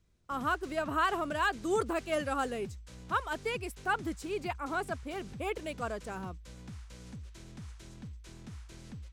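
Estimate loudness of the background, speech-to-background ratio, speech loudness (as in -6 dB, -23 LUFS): -48.5 LUFS, 14.0 dB, -34.5 LUFS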